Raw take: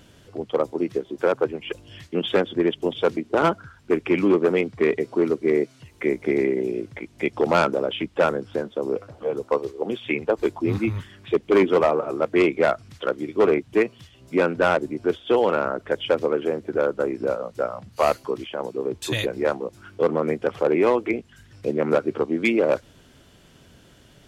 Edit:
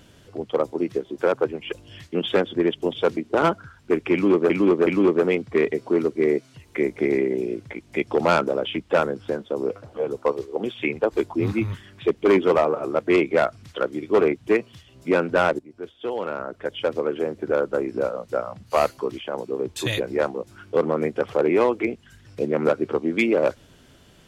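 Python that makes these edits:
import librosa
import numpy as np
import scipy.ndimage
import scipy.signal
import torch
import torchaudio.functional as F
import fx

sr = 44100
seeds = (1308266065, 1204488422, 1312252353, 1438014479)

y = fx.edit(x, sr, fx.repeat(start_s=4.13, length_s=0.37, count=3),
    fx.fade_in_from(start_s=14.85, length_s=1.9, floor_db=-18.5), tone=tone)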